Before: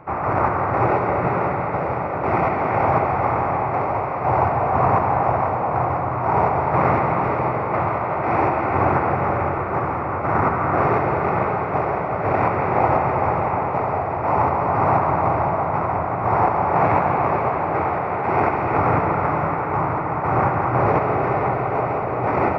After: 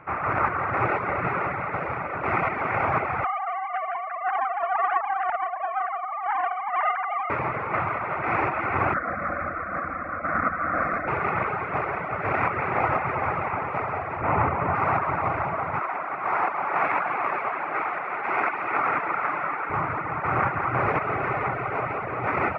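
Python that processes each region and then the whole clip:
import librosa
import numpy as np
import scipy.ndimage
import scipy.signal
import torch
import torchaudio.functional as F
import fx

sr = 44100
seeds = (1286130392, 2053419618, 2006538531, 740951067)

y = fx.chain(x, sr, fx.sine_speech(),
    fx.air_absorb(metres=320.0),
    fx.doppler_dist(depth_ms=0.94), at=(3.24, 7.3))
y = fx.chain(y, sr, fx.low_shelf(hz=160.0, db=5.5),
    fx.fixed_phaser(hz=600.0, stages=8), at=(8.94, 11.08))
y = fx.chain(y, sr, fx.lowpass(hz=3500.0, slope=24),
    fx.low_shelf(hz=400.0, db=7.0), at=(14.21, 14.75))
y = fx.chain(y, sr, fx.highpass(hz=310.0, slope=12),
    fx.peak_eq(hz=480.0, db=-3.5, octaves=0.74), at=(15.79, 19.7))
y = fx.dereverb_blind(y, sr, rt60_s=0.65)
y = fx.band_shelf(y, sr, hz=2000.0, db=9.5, octaves=1.7)
y = y * librosa.db_to_amplitude(-6.5)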